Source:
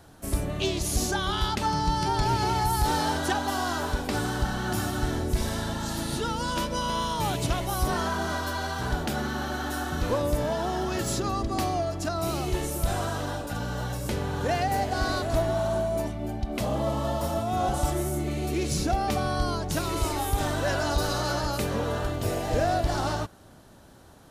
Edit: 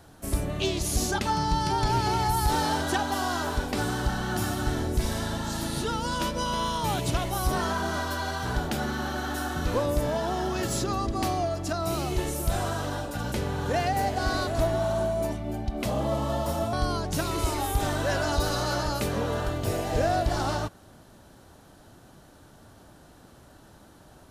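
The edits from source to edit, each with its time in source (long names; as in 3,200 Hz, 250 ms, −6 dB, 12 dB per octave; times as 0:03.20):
0:01.18–0:01.54: remove
0:13.68–0:14.07: remove
0:17.48–0:19.31: remove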